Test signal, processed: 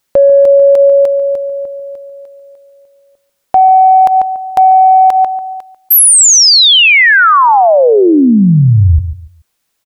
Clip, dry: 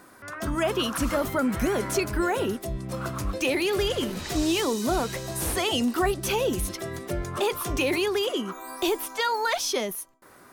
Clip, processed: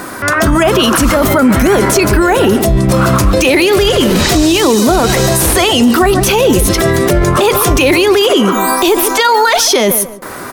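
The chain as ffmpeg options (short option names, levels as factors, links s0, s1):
-filter_complex "[0:a]acontrast=53,asplit=2[s0][s1];[s1]adelay=143,lowpass=f=1400:p=1,volume=0.224,asplit=2[s2][s3];[s3]adelay=143,lowpass=f=1400:p=1,volume=0.24,asplit=2[s4][s5];[s5]adelay=143,lowpass=f=1400:p=1,volume=0.24[s6];[s2][s4][s6]amix=inputs=3:normalize=0[s7];[s0][s7]amix=inputs=2:normalize=0,acompressor=threshold=0.126:ratio=6,alimiter=level_in=11.9:limit=0.891:release=50:level=0:latency=1,volume=0.891"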